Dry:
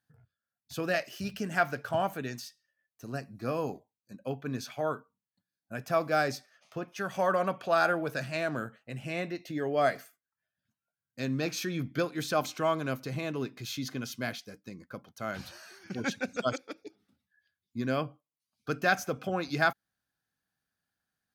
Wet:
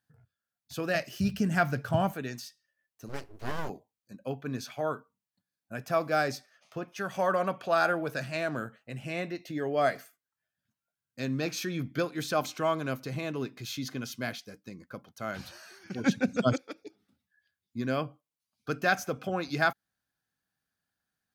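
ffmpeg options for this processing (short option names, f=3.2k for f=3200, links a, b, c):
-filter_complex "[0:a]asettb=1/sr,asplit=3[a][b][c];[a]atrim=end=0.954[d];[b]atrim=start=0.95:end=2.12,asetpts=PTS-STARTPTS,afade=t=in:d=0.004:c=qsin,afade=t=out:st=1.166:d=0.004:c=qsin,bass=f=250:g=12,treble=f=4k:g=2[e];[c]atrim=start=2.116[f];[d][e]acrossfade=d=0.004:c1=hsin:c2=qsin[g];[g][f]acrossfade=d=0.004:c1=qsin:c2=hsin,asplit=3[h][i][j];[h]afade=t=out:st=3.08:d=0.02[k];[i]aeval=exprs='abs(val(0))':c=same,afade=t=in:st=3.08:d=0.02,afade=t=out:st=3.68:d=0.02[l];[j]afade=t=in:st=3.68:d=0.02[m];[k][l][m]amix=inputs=3:normalize=0,asettb=1/sr,asplit=3[n][o][p];[n]atrim=end=16.064[q];[o]atrim=start=16.06:end=16.58,asetpts=PTS-STARTPTS,afade=t=in:d=0.004:c=qsin,afade=t=out:st=0.516:d=0.004:c=qsin,equalizer=f=150:t=o:w=2.5:g=12.5[r];[p]atrim=start=16.576[s];[q][r]acrossfade=d=0.004:c1=hsin:c2=qsin[t];[t][s]acrossfade=d=0.004:c1=qsin:c2=hsin"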